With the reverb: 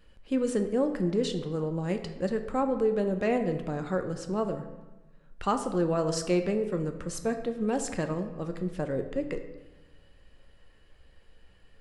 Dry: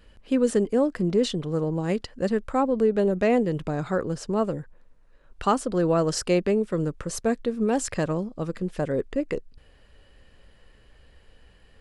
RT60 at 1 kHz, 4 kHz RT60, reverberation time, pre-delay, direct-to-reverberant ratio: 1.1 s, 0.75 s, 1.1 s, 4 ms, 6.0 dB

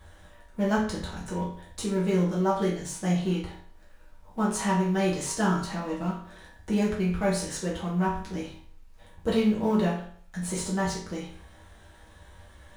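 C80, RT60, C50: 9.5 dB, 0.55 s, 5.5 dB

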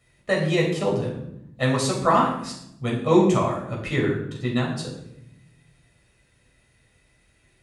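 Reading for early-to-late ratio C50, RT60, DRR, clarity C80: 4.5 dB, 0.75 s, -3.5 dB, 7.5 dB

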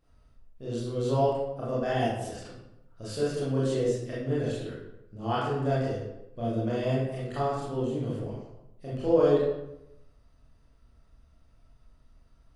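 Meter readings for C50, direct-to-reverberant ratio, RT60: -1.0 dB, -8.5 dB, 0.90 s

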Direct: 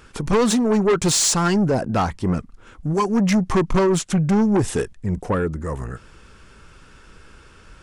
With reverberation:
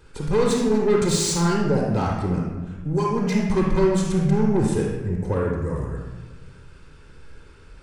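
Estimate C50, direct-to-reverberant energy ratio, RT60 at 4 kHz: 0.5 dB, -2.0 dB, 0.85 s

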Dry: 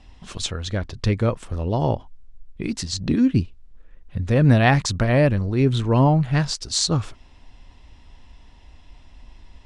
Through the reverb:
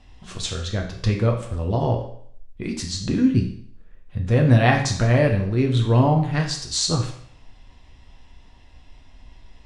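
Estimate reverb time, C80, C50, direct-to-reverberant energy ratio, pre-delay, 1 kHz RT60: 0.60 s, 11.0 dB, 7.5 dB, 1.5 dB, 8 ms, 0.60 s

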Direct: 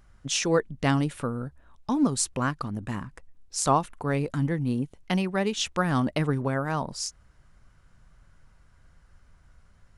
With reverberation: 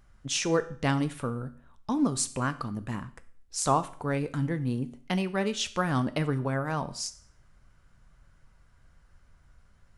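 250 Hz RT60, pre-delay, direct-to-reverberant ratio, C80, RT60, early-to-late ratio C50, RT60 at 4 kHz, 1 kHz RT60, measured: 0.50 s, 8 ms, 11.0 dB, 20.0 dB, 0.55 s, 16.5 dB, 0.50 s, 0.50 s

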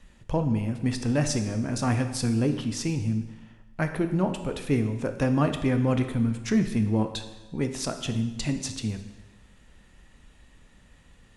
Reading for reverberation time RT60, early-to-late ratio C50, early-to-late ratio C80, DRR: 1.1 s, 9.5 dB, 11.0 dB, 7.0 dB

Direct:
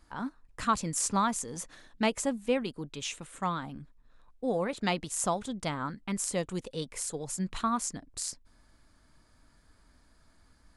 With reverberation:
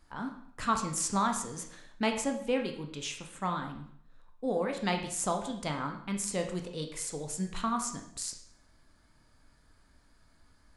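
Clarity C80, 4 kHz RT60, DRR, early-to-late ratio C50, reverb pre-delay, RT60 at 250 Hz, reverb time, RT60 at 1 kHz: 11.0 dB, 0.60 s, 3.5 dB, 8.0 dB, 7 ms, 0.65 s, 0.65 s, 0.65 s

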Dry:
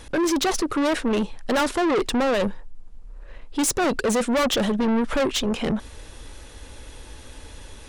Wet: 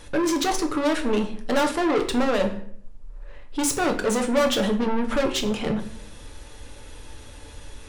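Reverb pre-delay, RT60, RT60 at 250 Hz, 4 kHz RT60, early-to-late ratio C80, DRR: 7 ms, 0.60 s, 0.80 s, 0.45 s, 14.5 dB, 3.5 dB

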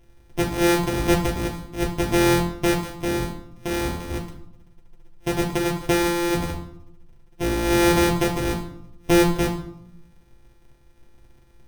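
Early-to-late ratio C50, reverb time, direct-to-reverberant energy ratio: 8.5 dB, 0.70 s, -2.0 dB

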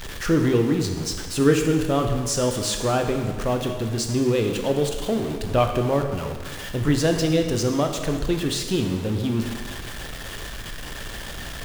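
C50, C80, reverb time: 6.0 dB, 7.5 dB, 1.5 s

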